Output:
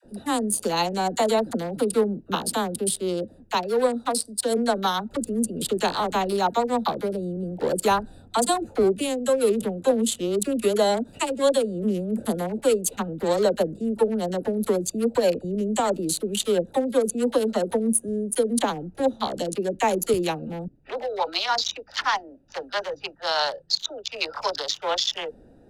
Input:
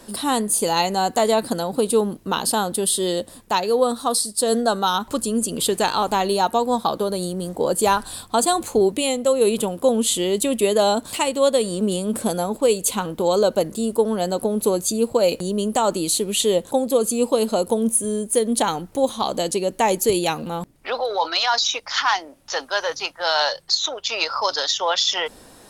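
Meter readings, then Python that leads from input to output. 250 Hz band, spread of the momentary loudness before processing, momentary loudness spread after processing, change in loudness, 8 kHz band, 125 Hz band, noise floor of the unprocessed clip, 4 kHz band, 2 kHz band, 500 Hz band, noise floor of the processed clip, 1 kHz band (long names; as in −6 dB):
−2.0 dB, 6 LU, 6 LU, −4.0 dB, −6.0 dB, −2.0 dB, −47 dBFS, −6.0 dB, −4.5 dB, −3.5 dB, −52 dBFS, −4.5 dB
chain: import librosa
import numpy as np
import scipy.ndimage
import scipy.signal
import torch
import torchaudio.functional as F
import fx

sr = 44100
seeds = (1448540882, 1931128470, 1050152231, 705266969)

y = fx.wiener(x, sr, points=41)
y = fx.dispersion(y, sr, late='lows', ms=44.0, hz=600.0)
y = y * 10.0 ** (-1.5 / 20.0)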